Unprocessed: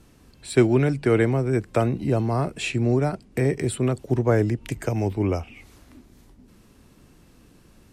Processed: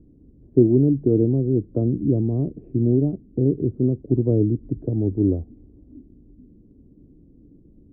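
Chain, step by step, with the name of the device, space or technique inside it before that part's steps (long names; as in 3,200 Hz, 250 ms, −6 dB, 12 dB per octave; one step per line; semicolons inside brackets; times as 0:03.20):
under water (low-pass filter 420 Hz 24 dB per octave; parametric band 290 Hz +6.5 dB 0.29 octaves)
level +2 dB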